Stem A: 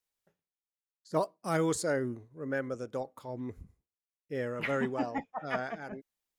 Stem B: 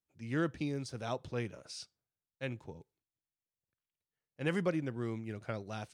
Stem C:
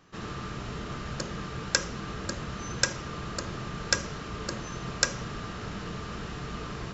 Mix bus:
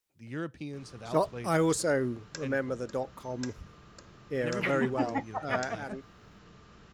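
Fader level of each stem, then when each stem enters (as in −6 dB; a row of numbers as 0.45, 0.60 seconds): +3.0, −3.5, −17.5 decibels; 0.00, 0.00, 0.60 seconds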